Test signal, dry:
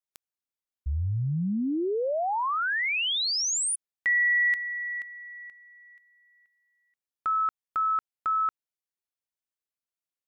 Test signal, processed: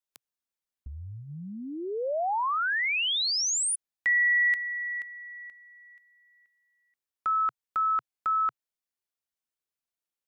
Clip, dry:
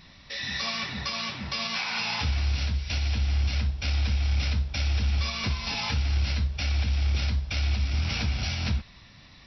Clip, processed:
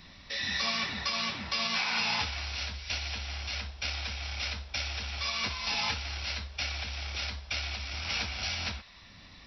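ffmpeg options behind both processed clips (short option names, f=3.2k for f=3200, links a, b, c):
-filter_complex "[0:a]equalizer=f=130:t=o:w=0.27:g=-9,acrossover=split=490|1100[a][b][c];[a]acompressor=threshold=-39dB:ratio=6:attack=7.7:release=621:knee=1:detection=peak[d];[d][b][c]amix=inputs=3:normalize=0"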